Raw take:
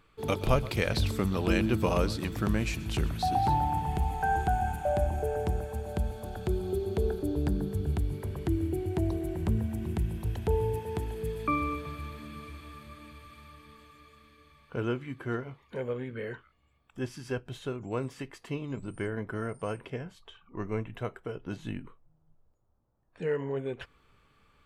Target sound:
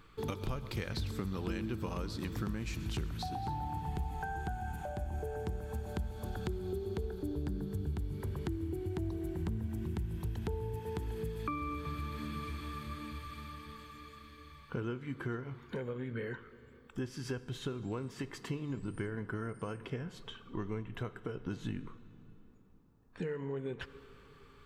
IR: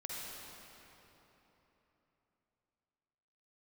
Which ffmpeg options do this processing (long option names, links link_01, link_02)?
-filter_complex "[0:a]acompressor=threshold=-40dB:ratio=6,equalizer=frequency=630:width_type=o:width=0.67:gain=-8,equalizer=frequency=2500:width_type=o:width=0.67:gain=-4,equalizer=frequency=10000:width_type=o:width=0.67:gain=-5,asplit=2[link_01][link_02];[1:a]atrim=start_sample=2205[link_03];[link_02][link_03]afir=irnorm=-1:irlink=0,volume=-13.5dB[link_04];[link_01][link_04]amix=inputs=2:normalize=0,volume=5dB"